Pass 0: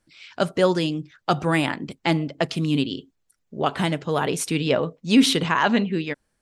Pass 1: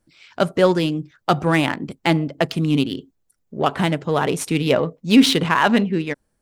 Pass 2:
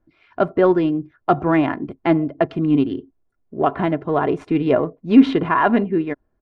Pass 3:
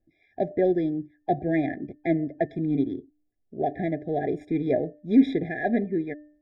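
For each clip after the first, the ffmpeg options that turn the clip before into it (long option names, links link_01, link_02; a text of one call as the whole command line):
ffmpeg -i in.wav -filter_complex "[0:a]highshelf=frequency=10000:gain=9,asplit=2[link_01][link_02];[link_02]adynamicsmooth=sensitivity=3:basefreq=1400,volume=2dB[link_03];[link_01][link_03]amix=inputs=2:normalize=0,volume=-3.5dB" out.wav
ffmpeg -i in.wav -af "lowpass=1400,aecho=1:1:2.9:0.45,volume=1dB" out.wav
ffmpeg -i in.wav -af "bandreject=frequency=299.4:width_type=h:width=4,bandreject=frequency=598.8:width_type=h:width=4,bandreject=frequency=898.2:width_type=h:width=4,bandreject=frequency=1197.6:width_type=h:width=4,bandreject=frequency=1497:width_type=h:width=4,bandreject=frequency=1796.4:width_type=h:width=4,afftfilt=real='re*eq(mod(floor(b*sr/1024/810),2),0)':imag='im*eq(mod(floor(b*sr/1024/810),2),0)':win_size=1024:overlap=0.75,volume=-7dB" out.wav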